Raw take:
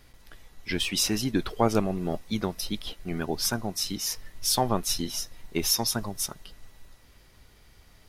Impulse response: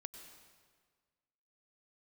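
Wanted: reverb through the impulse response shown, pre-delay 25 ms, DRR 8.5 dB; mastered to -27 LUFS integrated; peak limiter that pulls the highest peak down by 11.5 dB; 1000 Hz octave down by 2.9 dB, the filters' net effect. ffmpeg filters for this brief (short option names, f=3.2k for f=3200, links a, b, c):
-filter_complex "[0:a]equalizer=f=1k:t=o:g=-4,alimiter=limit=-21.5dB:level=0:latency=1,asplit=2[a][b];[1:a]atrim=start_sample=2205,adelay=25[c];[b][c]afir=irnorm=-1:irlink=0,volume=-4dB[d];[a][d]amix=inputs=2:normalize=0,volume=5dB"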